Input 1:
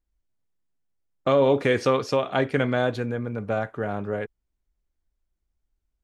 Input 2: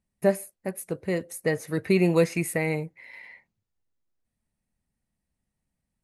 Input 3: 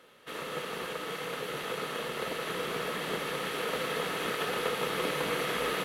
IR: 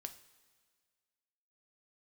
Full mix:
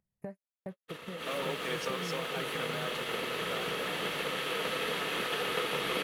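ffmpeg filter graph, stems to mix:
-filter_complex "[0:a]aemphasis=mode=production:type=riaa,acrusher=bits=6:mix=0:aa=0.000001,volume=0.158[s0];[1:a]equalizer=f=200:w=2.3:g=8,acompressor=threshold=0.1:ratio=6,equalizer=f=125:t=o:w=1:g=10,equalizer=f=250:t=o:w=1:g=-8,equalizer=f=500:t=o:w=1:g=6,equalizer=f=1000:t=o:w=1:g=3,equalizer=f=2000:t=o:w=1:g=3,equalizer=f=4000:t=o:w=1:g=-7,equalizer=f=8000:t=o:w=1:g=-4,volume=0.355[s1];[2:a]adynamicequalizer=threshold=0.00282:dfrequency=2900:dqfactor=1.4:tfrequency=2900:tqfactor=1.4:attack=5:release=100:ratio=0.375:range=2.5:mode=boostabove:tftype=bell,adelay=600,volume=1.06,asplit=2[s2][s3];[s3]volume=0.668[s4];[s1][s2]amix=inputs=2:normalize=0,aphaser=in_gain=1:out_gain=1:delay=4.5:decay=0.28:speed=1.4:type=sinusoidal,acompressor=threshold=0.0126:ratio=8,volume=1[s5];[s4]aecho=0:1:317:1[s6];[s0][s5][s6]amix=inputs=3:normalize=0,agate=range=0.00224:threshold=0.00891:ratio=16:detection=peak,acompressor=mode=upward:threshold=0.00282:ratio=2.5"

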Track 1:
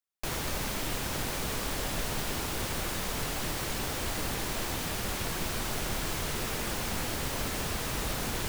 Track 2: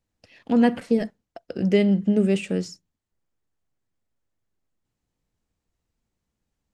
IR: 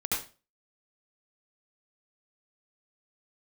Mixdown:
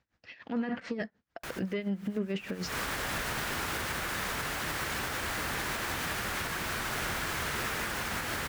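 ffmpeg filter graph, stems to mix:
-filter_complex "[0:a]dynaudnorm=f=220:g=13:m=3.76,adelay=1200,volume=0.335[s0];[1:a]lowpass=f=6100:w=0.5412,lowpass=f=6100:w=1.3066,acontrast=45,aeval=exprs='val(0)*pow(10,-19*(0.5-0.5*cos(2*PI*6.8*n/s))/20)':c=same,volume=1,asplit=2[s1][s2];[s2]apad=whole_len=427165[s3];[s0][s3]sidechaincompress=threshold=0.0316:ratio=16:attack=8:release=307[s4];[s4][s1]amix=inputs=2:normalize=0,highpass=44,equalizer=f=1600:w=0.98:g=10,alimiter=limit=0.0631:level=0:latency=1:release=214"

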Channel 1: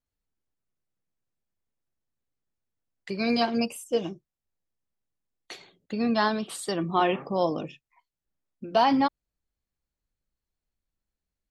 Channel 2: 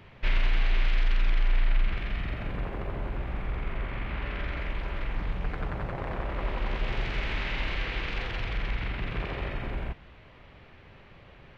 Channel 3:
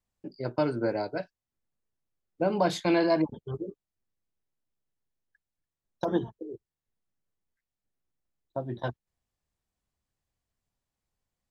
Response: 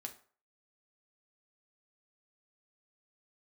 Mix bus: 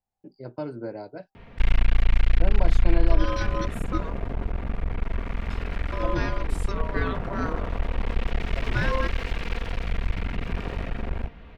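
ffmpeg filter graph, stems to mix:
-filter_complex "[0:a]aeval=exprs='val(0)*sin(2*PI*790*n/s)':c=same,volume=0.668[s0];[1:a]aecho=1:1:4.3:0.43,aeval=exprs='clip(val(0),-1,0.00891)':c=same,adelay=1350,volume=1.33[s1];[2:a]volume=0.398[s2];[s0][s1][s2]amix=inputs=3:normalize=0,tiltshelf=f=970:g=3.5"

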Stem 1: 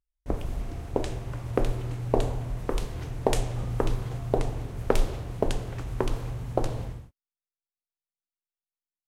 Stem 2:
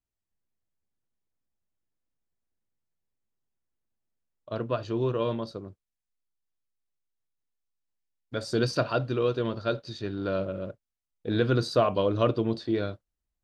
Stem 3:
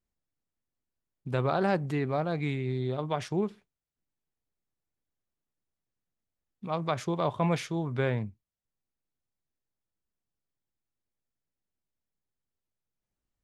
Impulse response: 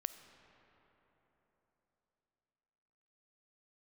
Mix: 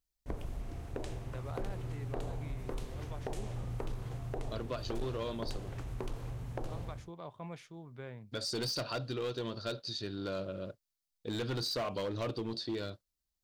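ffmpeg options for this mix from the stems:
-filter_complex "[0:a]alimiter=limit=0.251:level=0:latency=1:release=151,volume=0.473[s0];[1:a]equalizer=f=4500:w=1.4:g=8,crystalizer=i=1.5:c=0,volume=0.531[s1];[2:a]volume=0.133[s2];[s0][s1][s2]amix=inputs=3:normalize=0,asoftclip=type=hard:threshold=0.0447,acompressor=threshold=0.0178:ratio=2.5"

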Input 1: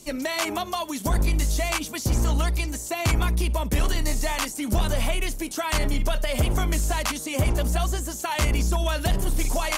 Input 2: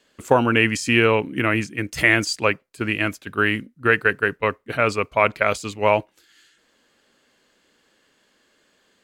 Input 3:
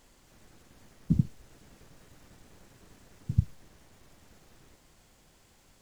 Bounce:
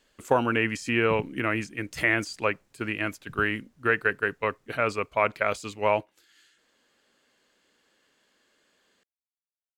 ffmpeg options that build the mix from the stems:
-filter_complex "[1:a]acrossover=split=2500[s0][s1];[s1]acompressor=threshold=0.0282:ratio=4:attack=1:release=60[s2];[s0][s2]amix=inputs=2:normalize=0,lowshelf=f=270:g=-4,volume=0.562[s3];[2:a]volume=0.224[s4];[s3][s4]amix=inputs=2:normalize=0"

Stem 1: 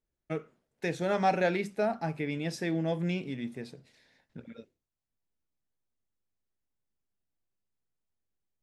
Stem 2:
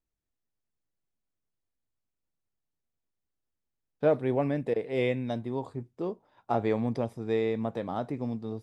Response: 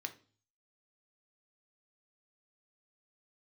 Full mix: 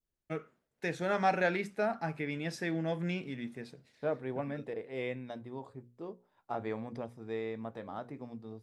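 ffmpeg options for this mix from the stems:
-filter_complex "[0:a]volume=0.631[s0];[1:a]bandreject=f=60:t=h:w=6,bandreject=f=120:t=h:w=6,bandreject=f=180:t=h:w=6,bandreject=f=240:t=h:w=6,bandreject=f=300:t=h:w=6,bandreject=f=360:t=h:w=6,bandreject=f=420:t=h:w=6,bandreject=f=480:t=h:w=6,bandreject=f=540:t=h:w=6,volume=0.316[s1];[s0][s1]amix=inputs=2:normalize=0,adynamicequalizer=threshold=0.00224:dfrequency=1500:dqfactor=1.1:tfrequency=1500:tqfactor=1.1:attack=5:release=100:ratio=0.375:range=3:mode=boostabove:tftype=bell"

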